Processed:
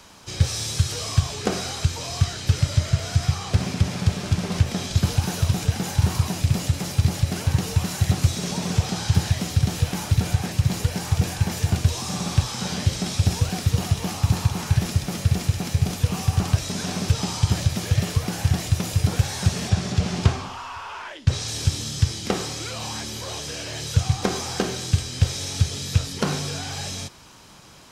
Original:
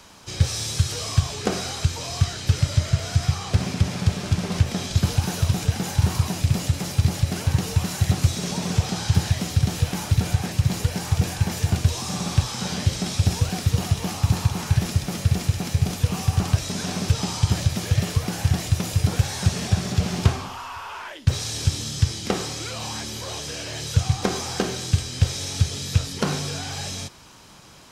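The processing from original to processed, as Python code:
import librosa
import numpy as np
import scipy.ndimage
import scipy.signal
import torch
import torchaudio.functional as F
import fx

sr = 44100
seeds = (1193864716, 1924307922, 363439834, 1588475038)

y = fx.lowpass(x, sr, hz=8500.0, slope=12, at=(19.69, 21.48))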